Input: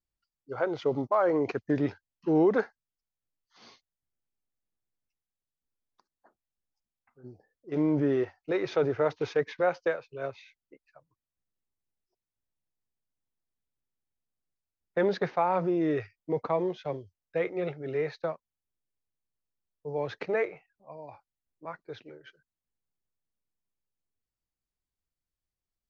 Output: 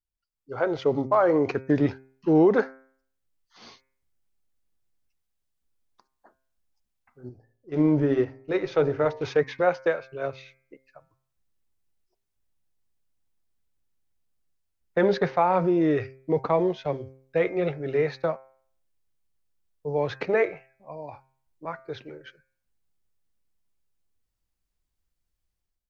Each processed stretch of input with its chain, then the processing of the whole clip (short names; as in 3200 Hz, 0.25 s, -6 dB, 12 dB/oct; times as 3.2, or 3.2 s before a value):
7.29–9.25 low shelf 63 Hz +8.5 dB + de-hum 56.91 Hz, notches 18 + upward expander, over -34 dBFS
whole clip: low shelf 71 Hz +9 dB; de-hum 132.4 Hz, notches 19; AGC gain up to 13 dB; gain -7 dB